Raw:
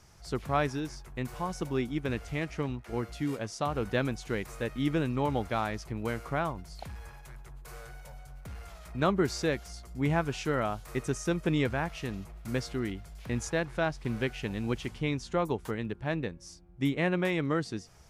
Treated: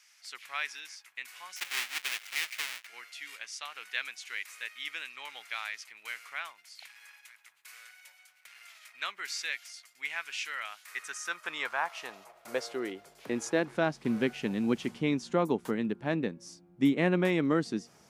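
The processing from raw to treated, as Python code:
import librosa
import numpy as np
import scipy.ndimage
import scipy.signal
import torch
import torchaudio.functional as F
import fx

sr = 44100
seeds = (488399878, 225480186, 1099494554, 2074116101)

y = fx.halfwave_hold(x, sr, at=(1.56, 2.87))
y = fx.filter_sweep_highpass(y, sr, from_hz=2200.0, to_hz=220.0, start_s=10.68, end_s=13.86, q=1.9)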